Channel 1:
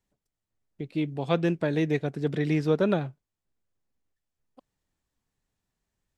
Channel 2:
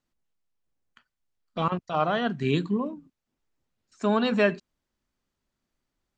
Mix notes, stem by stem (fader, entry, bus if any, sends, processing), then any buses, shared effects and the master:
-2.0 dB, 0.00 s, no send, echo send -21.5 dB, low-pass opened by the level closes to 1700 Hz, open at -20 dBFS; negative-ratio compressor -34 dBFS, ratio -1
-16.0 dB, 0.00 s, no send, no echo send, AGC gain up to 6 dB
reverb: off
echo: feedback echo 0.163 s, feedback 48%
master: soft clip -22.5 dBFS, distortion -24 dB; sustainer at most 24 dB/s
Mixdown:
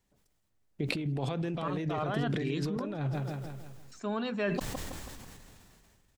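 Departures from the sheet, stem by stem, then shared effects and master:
stem 1: missing low-pass opened by the level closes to 1700 Hz, open at -20 dBFS; master: missing soft clip -22.5 dBFS, distortion -24 dB

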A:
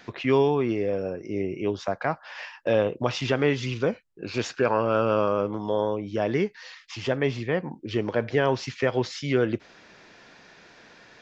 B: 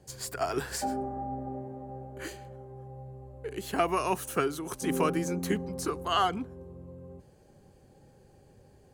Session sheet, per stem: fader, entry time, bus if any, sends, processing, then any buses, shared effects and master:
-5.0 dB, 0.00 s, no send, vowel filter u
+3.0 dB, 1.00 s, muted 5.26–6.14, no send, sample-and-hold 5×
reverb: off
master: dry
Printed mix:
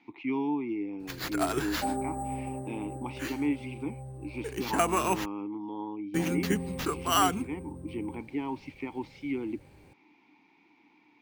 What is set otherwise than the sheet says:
stem A -5.0 dB -> +4.0 dB; master: extra bell 510 Hz -4 dB 1.6 oct

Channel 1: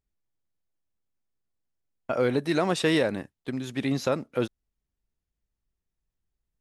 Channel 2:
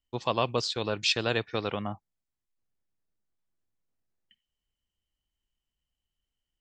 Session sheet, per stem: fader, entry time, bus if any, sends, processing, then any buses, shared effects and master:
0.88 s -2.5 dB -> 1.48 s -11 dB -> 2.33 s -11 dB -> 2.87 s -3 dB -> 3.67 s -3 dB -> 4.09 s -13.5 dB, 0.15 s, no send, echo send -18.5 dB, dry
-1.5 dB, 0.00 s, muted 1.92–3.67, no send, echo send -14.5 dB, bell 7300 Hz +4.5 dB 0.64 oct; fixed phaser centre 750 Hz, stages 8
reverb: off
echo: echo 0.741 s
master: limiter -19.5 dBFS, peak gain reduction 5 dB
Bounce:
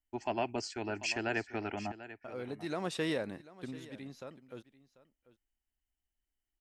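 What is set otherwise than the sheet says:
stem 1 -2.5 dB -> -10.0 dB; stem 2: missing bell 7300 Hz +4.5 dB 0.64 oct

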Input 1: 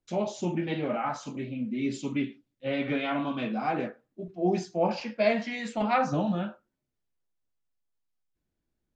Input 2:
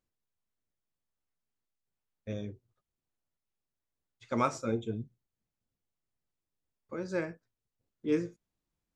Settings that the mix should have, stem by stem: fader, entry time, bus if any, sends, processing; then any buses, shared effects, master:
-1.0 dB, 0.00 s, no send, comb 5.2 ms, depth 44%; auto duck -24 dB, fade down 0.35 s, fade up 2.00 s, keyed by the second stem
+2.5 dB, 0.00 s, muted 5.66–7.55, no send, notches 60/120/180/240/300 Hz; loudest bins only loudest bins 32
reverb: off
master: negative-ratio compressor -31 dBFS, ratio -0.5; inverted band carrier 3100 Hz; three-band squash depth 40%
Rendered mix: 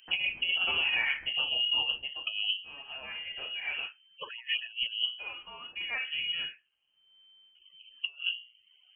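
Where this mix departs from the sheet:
stem 1: missing comb 5.2 ms, depth 44%; stem 2 +2.5 dB -> +11.5 dB

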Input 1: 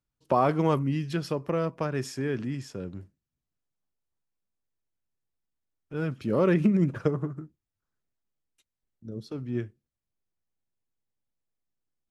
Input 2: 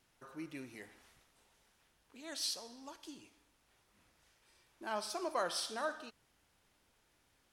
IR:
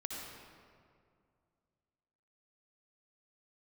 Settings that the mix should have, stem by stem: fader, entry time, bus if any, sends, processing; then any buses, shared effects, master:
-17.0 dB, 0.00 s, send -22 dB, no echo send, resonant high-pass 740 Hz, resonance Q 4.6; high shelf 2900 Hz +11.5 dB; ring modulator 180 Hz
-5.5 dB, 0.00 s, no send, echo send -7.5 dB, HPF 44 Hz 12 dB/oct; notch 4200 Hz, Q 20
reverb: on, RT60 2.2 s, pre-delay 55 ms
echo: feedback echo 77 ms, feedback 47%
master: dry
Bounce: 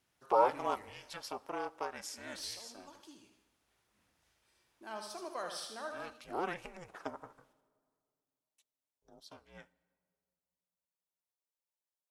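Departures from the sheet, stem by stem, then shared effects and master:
stem 1 -17.0 dB -> -10.5 dB; stem 2: missing notch 4200 Hz, Q 20

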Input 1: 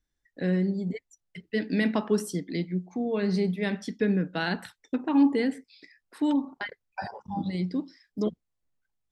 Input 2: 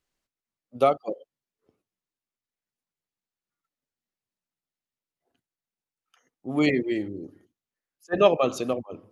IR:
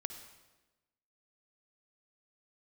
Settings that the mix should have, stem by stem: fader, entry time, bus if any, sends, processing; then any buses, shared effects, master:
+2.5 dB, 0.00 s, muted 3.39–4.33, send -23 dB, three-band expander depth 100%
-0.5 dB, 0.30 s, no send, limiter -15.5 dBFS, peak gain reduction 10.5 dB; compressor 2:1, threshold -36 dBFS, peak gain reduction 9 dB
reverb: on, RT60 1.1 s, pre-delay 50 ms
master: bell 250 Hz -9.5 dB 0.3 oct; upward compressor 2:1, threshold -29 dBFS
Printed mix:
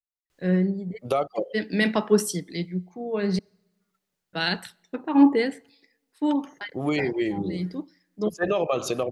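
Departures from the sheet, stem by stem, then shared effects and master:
stem 2 -0.5 dB -> +9.5 dB; master: missing upward compressor 2:1, threshold -29 dBFS

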